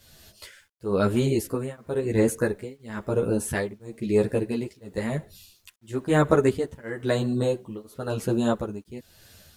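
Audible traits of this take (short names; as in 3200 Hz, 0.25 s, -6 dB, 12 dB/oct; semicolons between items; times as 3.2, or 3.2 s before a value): tremolo triangle 0.99 Hz, depth 100%; a quantiser's noise floor 12-bit, dither none; a shimmering, thickened sound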